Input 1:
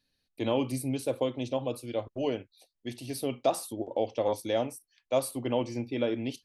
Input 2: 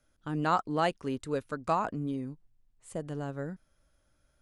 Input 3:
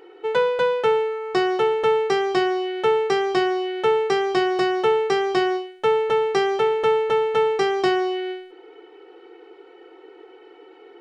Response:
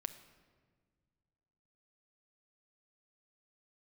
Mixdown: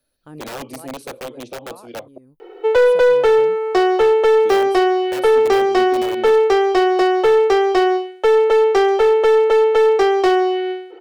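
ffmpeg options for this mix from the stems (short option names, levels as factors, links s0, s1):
-filter_complex "[0:a]highpass=180,acrossover=split=230[s0][s1];[s1]acompressor=threshold=0.0355:ratio=3[s2];[s0][s2]amix=inputs=2:normalize=0,aeval=exprs='(mod(20*val(0)+1,2)-1)/20':c=same,volume=0.841,asplit=3[s3][s4][s5];[s3]atrim=end=2.18,asetpts=PTS-STARTPTS,afade=t=out:st=2.176:d=0.004:c=hsin[s6];[s4]atrim=start=2.18:end=4.42,asetpts=PTS-STARTPTS,volume=0[s7];[s5]atrim=start=4.42,asetpts=PTS-STARTPTS,afade=t=in:d=0.004:c=hsin[s8];[s6][s7][s8]concat=n=3:v=0:a=1,asplit=2[s9][s10];[1:a]aexciter=amount=6.7:drive=7.1:freq=10000,volume=0.473[s11];[2:a]highpass=f=300:w=0.5412,highpass=f=300:w=1.3066,adelay=2400,volume=1.33[s12];[s10]apad=whole_len=194677[s13];[s11][s13]sidechaincompress=threshold=0.00562:ratio=8:attack=16:release=475[s14];[s9][s14][s12]amix=inputs=3:normalize=0,equalizer=f=540:t=o:w=1.2:g=8,volume=2.99,asoftclip=hard,volume=0.335"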